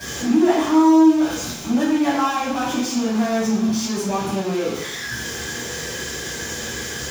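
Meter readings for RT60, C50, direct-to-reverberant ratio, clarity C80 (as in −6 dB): 0.70 s, 1.5 dB, −11.5 dB, 4.5 dB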